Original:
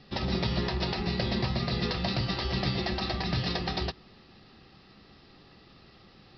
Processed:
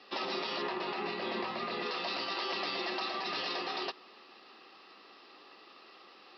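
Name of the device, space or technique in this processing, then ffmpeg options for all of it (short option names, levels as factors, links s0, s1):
laptop speaker: -filter_complex "[0:a]highpass=f=320:w=0.5412,highpass=f=320:w=1.3066,equalizer=f=1100:t=o:w=0.57:g=7.5,equalizer=f=2700:t=o:w=0.33:g=5,alimiter=level_in=1.26:limit=0.0631:level=0:latency=1:release=43,volume=0.794,asettb=1/sr,asplit=3[s0][s1][s2];[s0]atrim=end=0.624[s3];[s1]atrim=start=0.62:end=1.86,asetpts=PTS-STARTPTS,afade=t=in:d=0.004:c=qsin,afade=t=out:st=1.236:d=0.004:c=qsin,bass=f=250:g=6,treble=f=4000:g=-11[s4];[s2]atrim=start=1.856[s5];[s3][s4]acrossfade=d=0.004:c1=hsin:c2=qsin[s6];[s6][s5]acrossfade=d=0.004:c1=qsin:c2=hsin"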